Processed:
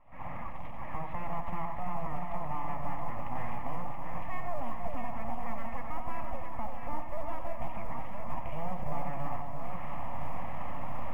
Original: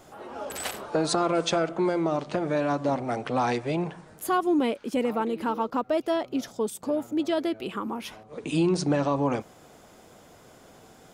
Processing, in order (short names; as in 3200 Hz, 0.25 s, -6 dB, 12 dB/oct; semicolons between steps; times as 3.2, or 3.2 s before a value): recorder AGC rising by 62 dB/s; full-wave rectifier; thinning echo 90 ms, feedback 25%, high-pass 210 Hz, level -9 dB; soft clip -14.5 dBFS, distortion -24 dB; LPF 1900 Hz 24 dB/oct; fixed phaser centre 1500 Hz, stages 6; echo with dull and thin repeats by turns 0.338 s, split 1100 Hz, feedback 83%, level -4 dB; short-mantissa float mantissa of 6-bit; gain -6 dB